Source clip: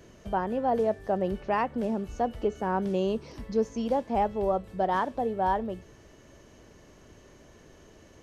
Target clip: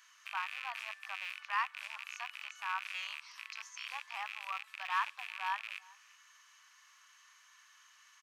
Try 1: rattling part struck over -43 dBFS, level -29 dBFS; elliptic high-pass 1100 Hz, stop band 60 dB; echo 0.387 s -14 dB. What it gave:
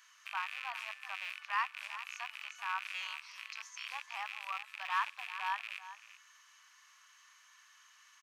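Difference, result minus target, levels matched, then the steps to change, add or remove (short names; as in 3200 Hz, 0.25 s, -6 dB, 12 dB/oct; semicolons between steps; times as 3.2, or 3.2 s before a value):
echo-to-direct +10.5 dB
change: echo 0.387 s -24.5 dB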